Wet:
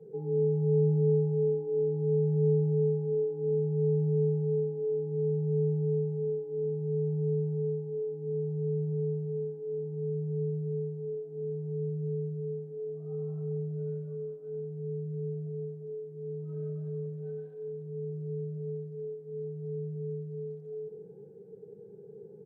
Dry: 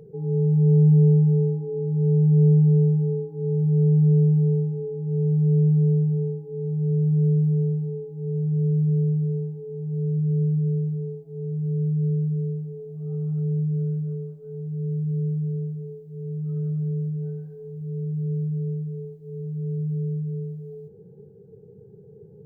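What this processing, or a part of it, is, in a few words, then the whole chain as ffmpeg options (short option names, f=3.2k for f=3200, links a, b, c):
Bluetooth headset: -af "highpass=f=62:p=1,adynamicequalizer=threshold=0.00631:dfrequency=310:dqfactor=3:tfrequency=310:tqfactor=3:attack=5:release=100:ratio=0.375:range=2:mode=cutabove:tftype=bell,highpass=240,aecho=1:1:95|190|285|380|475|570:0.376|0.192|0.0978|0.0499|0.0254|0.013,aresample=16000,aresample=44100" -ar 32000 -c:a sbc -b:a 64k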